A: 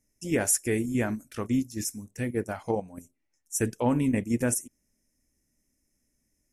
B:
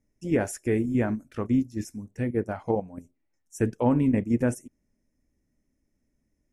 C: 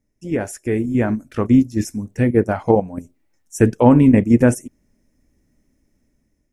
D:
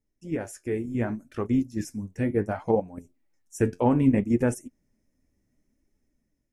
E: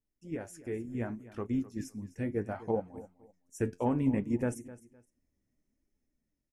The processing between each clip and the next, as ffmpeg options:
-af "lowpass=f=1200:p=1,volume=1.41"
-af "dynaudnorm=f=460:g=5:m=3.35,volume=1.26"
-af "flanger=delay=2.3:depth=9.1:regen=60:speed=0.67:shape=sinusoidal,volume=0.562"
-af "aecho=1:1:256|512:0.141|0.0339,volume=0.398"

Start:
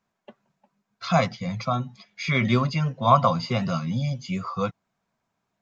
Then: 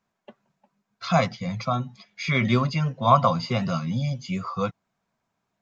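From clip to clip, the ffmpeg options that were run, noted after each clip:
-af anull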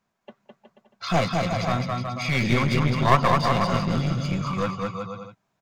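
-af "aecho=1:1:210|367.5|485.6|574.2|640.7:0.631|0.398|0.251|0.158|0.1,aeval=exprs='clip(val(0),-1,0.0501)':c=same,volume=1.19"

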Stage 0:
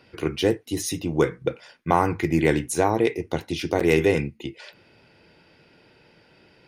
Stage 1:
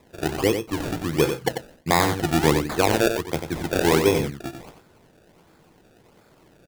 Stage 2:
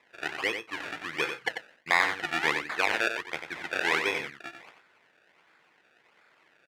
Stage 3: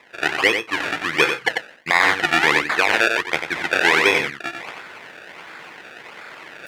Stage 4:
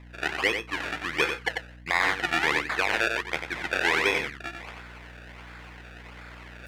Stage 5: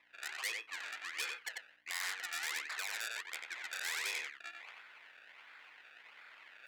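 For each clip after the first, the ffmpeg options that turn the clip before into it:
-af "acrusher=samples=29:mix=1:aa=0.000001:lfo=1:lforange=29:lforate=1.4,aecho=1:1:92:0.422"
-af "bandpass=f=2000:t=q:w=1.8:csg=0,volume=1.5"
-af "areverse,acompressor=mode=upward:threshold=0.0112:ratio=2.5,areverse,alimiter=level_in=5.01:limit=0.891:release=50:level=0:latency=1,volume=0.891"
-af "aeval=exprs='val(0)+0.0126*(sin(2*PI*60*n/s)+sin(2*PI*2*60*n/s)/2+sin(2*PI*3*60*n/s)/3+sin(2*PI*4*60*n/s)/4+sin(2*PI*5*60*n/s)/5)':c=same,volume=0.398"
-filter_complex "[0:a]acrossover=split=300 3300:gain=0.158 1 0.0794[s0][s1][s2];[s0][s1][s2]amix=inputs=3:normalize=0,asoftclip=type=tanh:threshold=0.0447,aderivative,volume=1.5"

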